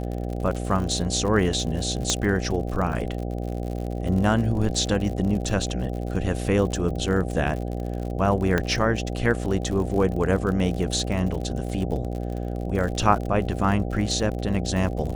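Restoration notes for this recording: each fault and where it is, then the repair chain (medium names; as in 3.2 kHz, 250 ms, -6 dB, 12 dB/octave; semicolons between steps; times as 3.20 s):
buzz 60 Hz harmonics 13 -29 dBFS
crackle 57 per s -30 dBFS
2.10 s: pop -8 dBFS
8.58 s: pop -9 dBFS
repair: de-click; de-hum 60 Hz, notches 13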